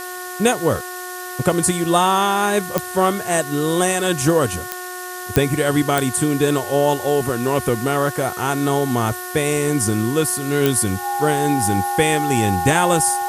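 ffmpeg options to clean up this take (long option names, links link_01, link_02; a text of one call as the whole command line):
ffmpeg -i in.wav -af "adeclick=threshold=4,bandreject=frequency=363:width_type=h:width=4,bandreject=frequency=726:width_type=h:width=4,bandreject=frequency=1089:width_type=h:width=4,bandreject=frequency=1452:width_type=h:width=4,bandreject=frequency=1815:width_type=h:width=4,bandreject=frequency=810:width=30,afftdn=noise_reduction=30:noise_floor=-30" out.wav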